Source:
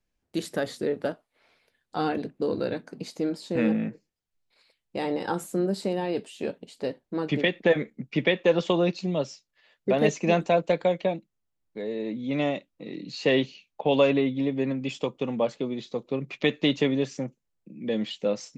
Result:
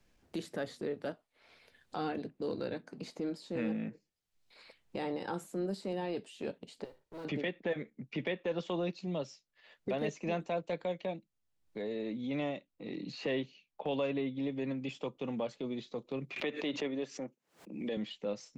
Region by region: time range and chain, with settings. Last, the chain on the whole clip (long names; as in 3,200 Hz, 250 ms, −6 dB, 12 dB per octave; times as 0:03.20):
0:06.84–0:07.25: lower of the sound and its delayed copy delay 2.1 ms + noise that follows the level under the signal 29 dB + downward compressor 3 to 1, threshold −49 dBFS
0:16.36–0:17.97: high-pass filter 280 Hz + background raised ahead of every attack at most 120 dB per second
whole clip: high-shelf EQ 9,200 Hz −7.5 dB; transient designer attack −6 dB, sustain −2 dB; multiband upward and downward compressor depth 70%; level −8.5 dB